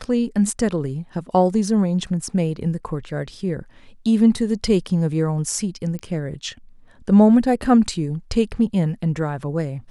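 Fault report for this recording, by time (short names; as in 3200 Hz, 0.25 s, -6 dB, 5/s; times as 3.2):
5.99 pop -20 dBFS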